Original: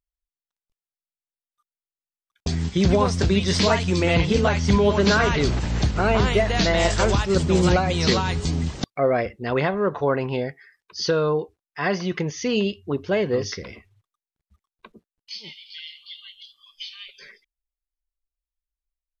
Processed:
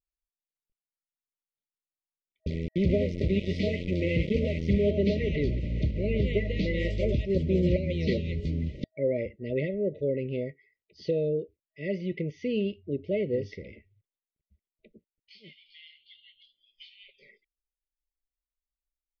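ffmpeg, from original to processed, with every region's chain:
-filter_complex "[0:a]asettb=1/sr,asplit=3[s0][s1][s2];[s0]atrim=end=2.504[s3];[s1]atrim=start=2.5:end=4.91,asetpts=PTS-STARTPTS,afade=t=in:d=0.004:c=qsin,afade=t=out:st=2.406:d=0.004:c=qsin,equalizer=f=1500:t=o:w=0.22:g=7,aeval=exprs='val(0)*gte(abs(val(0)),0.0841)':c=same[s4];[s2]atrim=start=4.906[s5];[s3][s4]acrossfade=d=0.004:c1=hsin:c2=qsin[s6];[s6][s5]acrossfade=d=0.004:c1=qsin:c2=hsin,aemphasis=mode=reproduction:type=75fm,afftfilt=real='re*(1-between(b*sr/4096,640,1900))':imag='im*(1-between(b*sr/4096,640,1900))':win_size=4096:overlap=0.75,lowpass=3100,volume=0.473"

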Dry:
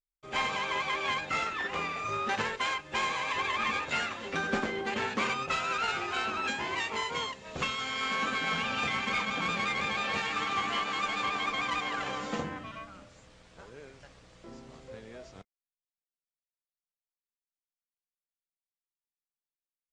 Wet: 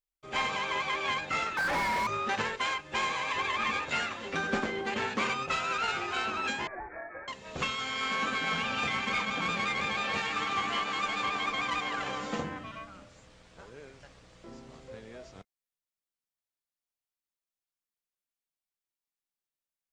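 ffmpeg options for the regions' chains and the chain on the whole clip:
-filter_complex "[0:a]asettb=1/sr,asplit=3[s0][s1][s2];[s0]atrim=end=1.574[s3];[s1]atrim=start=1.57:end=2.07,asetpts=PTS-STARTPTS,afade=t=in:d=0.004:c=qsin,afade=t=out:st=0.496:d=0.004:c=qsin,asuperstop=centerf=3300:order=8:qfactor=2.2,afreqshift=-220,asplit=2[s4][s5];[s5]highpass=f=720:p=1,volume=63.1,asoftclip=type=tanh:threshold=0.0794[s6];[s4][s6]amix=inputs=2:normalize=0,lowpass=f=2000:p=1,volume=0.501[s7];[s2]atrim=start=2.066[s8];[s3][s7]acrossfade=d=0.004:c1=hsin:c2=qsin[s9];[s9][s8]acrossfade=d=0.004:c1=qsin:c2=hsin,asettb=1/sr,asplit=3[s10][s11][s12];[s10]atrim=end=6.674[s13];[s11]atrim=start=6.67:end=7.28,asetpts=PTS-STARTPTS,afade=t=in:d=0.004:c=qsin,afade=t=out:st=0.606:d=0.004:c=qsin,aderivative,acontrast=83,lowpass=f=2300:t=q:w=0.5098,lowpass=f=2300:t=q:w=0.6013,lowpass=f=2300:t=q:w=0.9,lowpass=f=2300:t=q:w=2.563,afreqshift=-2700[s14];[s12]atrim=start=7.276[s15];[s13][s14]acrossfade=d=0.004:c1=hsin:c2=qsin[s16];[s16][s15]acrossfade=d=0.004:c1=qsin:c2=hsin"

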